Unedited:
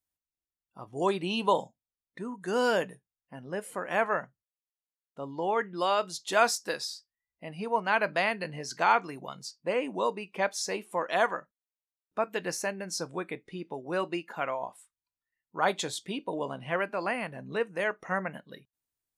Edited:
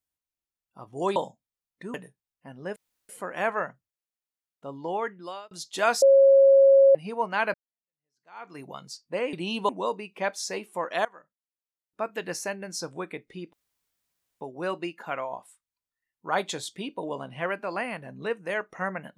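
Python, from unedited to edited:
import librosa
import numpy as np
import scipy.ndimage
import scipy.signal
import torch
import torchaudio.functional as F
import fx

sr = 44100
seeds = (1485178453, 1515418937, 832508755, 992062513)

y = fx.edit(x, sr, fx.move(start_s=1.16, length_s=0.36, to_s=9.87),
    fx.cut(start_s=2.3, length_s=0.51),
    fx.insert_room_tone(at_s=3.63, length_s=0.33),
    fx.fade_out_span(start_s=5.44, length_s=0.61),
    fx.bleep(start_s=6.56, length_s=0.93, hz=546.0, db=-12.5),
    fx.fade_in_span(start_s=8.08, length_s=1.05, curve='exp'),
    fx.fade_in_from(start_s=11.23, length_s=1.19, floor_db=-22.5),
    fx.insert_room_tone(at_s=13.71, length_s=0.88), tone=tone)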